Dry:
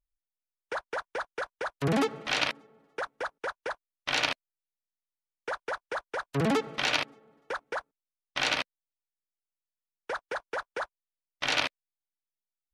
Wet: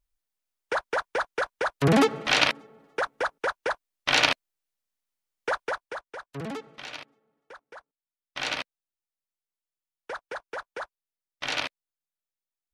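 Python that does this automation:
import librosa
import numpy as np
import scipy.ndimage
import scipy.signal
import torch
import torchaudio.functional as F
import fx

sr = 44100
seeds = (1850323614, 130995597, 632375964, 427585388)

y = fx.gain(x, sr, db=fx.line((5.6, 6.5), (6.05, -5.0), (6.88, -12.5), (7.73, -12.5), (8.5, -2.0)))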